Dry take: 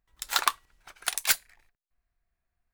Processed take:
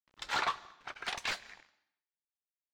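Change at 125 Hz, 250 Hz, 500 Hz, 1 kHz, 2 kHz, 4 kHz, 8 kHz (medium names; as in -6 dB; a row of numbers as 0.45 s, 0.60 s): +3.0 dB, +2.0 dB, +0.5 dB, -4.5 dB, -4.5 dB, -8.0 dB, -18.0 dB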